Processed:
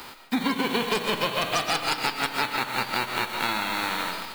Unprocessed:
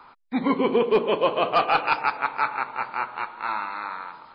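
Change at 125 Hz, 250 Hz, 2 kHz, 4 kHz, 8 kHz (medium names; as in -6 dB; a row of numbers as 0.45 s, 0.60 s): +3.0 dB, -1.5 dB, +2.0 dB, +8.0 dB, no reading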